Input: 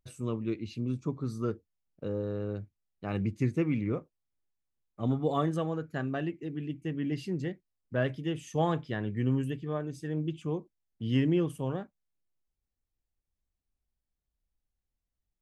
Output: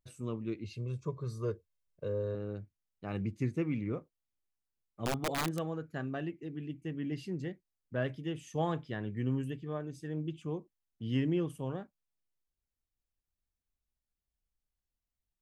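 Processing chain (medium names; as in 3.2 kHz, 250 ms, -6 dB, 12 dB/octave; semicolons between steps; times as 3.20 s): 0.64–2.35 s: comb 1.9 ms, depth 88%; 5.05–5.61 s: integer overflow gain 21.5 dB; trim -4.5 dB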